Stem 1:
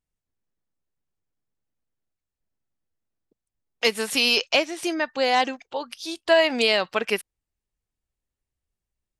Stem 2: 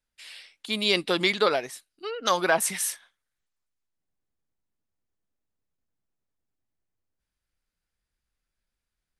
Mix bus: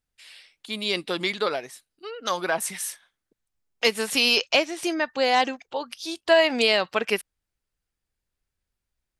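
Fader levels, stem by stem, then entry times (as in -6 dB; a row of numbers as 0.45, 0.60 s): 0.0, -3.0 dB; 0.00, 0.00 s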